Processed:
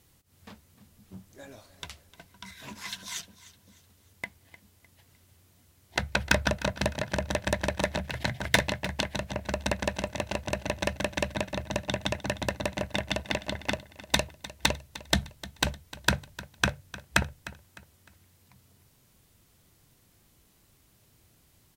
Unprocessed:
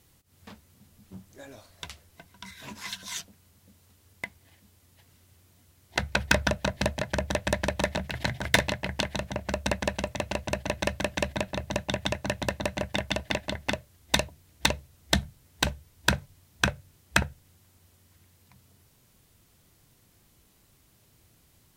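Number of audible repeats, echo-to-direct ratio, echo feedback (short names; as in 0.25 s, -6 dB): 3, -16.5 dB, 36%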